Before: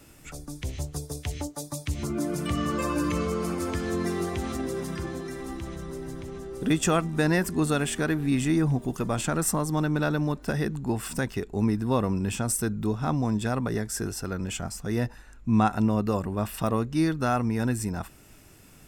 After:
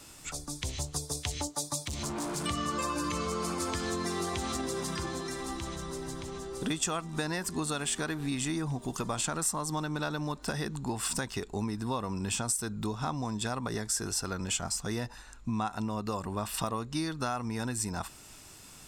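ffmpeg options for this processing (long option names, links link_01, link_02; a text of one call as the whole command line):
ffmpeg -i in.wav -filter_complex "[0:a]asettb=1/sr,asplit=3[link_01][link_02][link_03];[link_01]atrim=end=1.844[link_04];[link_02]atrim=start=1.84:end=2.44,asetpts=PTS-STARTPTS,afade=type=in:duration=0.004:curve=qsin,afade=type=out:start_time=0.596:duration=0.004:curve=qsin,asoftclip=type=hard:threshold=-31dB[link_05];[link_03]atrim=start=2.436[link_06];[link_04][link_05]acrossfade=duration=0.004:curve1=hsin:curve2=qsin[link_07];[link_07][link_06]acrossfade=duration=0.004:curve1=qsin:curve2=hsin,equalizer=frequency=1000:width_type=o:width=1:gain=8,equalizer=frequency=4000:width_type=o:width=1:gain=7,equalizer=frequency=8000:width_type=o:width=1:gain=8,acompressor=threshold=-26dB:ratio=6,equalizer=frequency=4900:width=0.59:gain=3,volume=-3.5dB" out.wav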